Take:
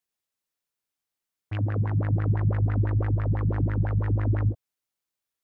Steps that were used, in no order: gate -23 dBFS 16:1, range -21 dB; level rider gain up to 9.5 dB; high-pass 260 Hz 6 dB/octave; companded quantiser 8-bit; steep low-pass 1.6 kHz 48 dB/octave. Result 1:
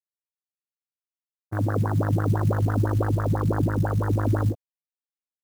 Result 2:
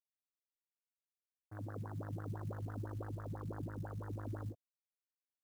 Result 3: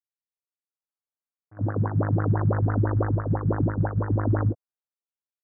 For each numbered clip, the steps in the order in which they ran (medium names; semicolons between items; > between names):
steep low-pass > companded quantiser > level rider > gate > high-pass; steep low-pass > companded quantiser > high-pass > gate > level rider; level rider > companded quantiser > high-pass > gate > steep low-pass